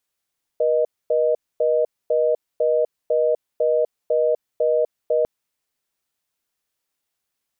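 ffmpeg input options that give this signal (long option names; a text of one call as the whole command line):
ffmpeg -f lavfi -i "aevalsrc='0.119*(sin(2*PI*480*t)+sin(2*PI*620*t))*clip(min(mod(t,0.5),0.25-mod(t,0.5))/0.005,0,1)':duration=4.65:sample_rate=44100" out.wav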